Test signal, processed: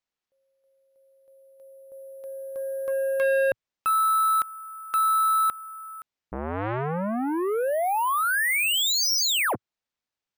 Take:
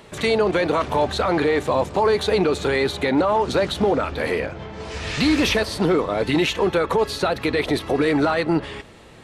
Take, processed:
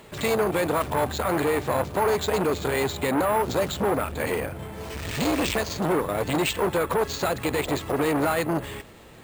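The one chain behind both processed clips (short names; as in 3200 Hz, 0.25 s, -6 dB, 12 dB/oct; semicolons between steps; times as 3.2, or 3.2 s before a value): careless resampling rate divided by 4×, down none, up hold; dynamic EQ 110 Hz, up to +5 dB, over -40 dBFS, Q 1.3; core saturation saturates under 860 Hz; gain -2 dB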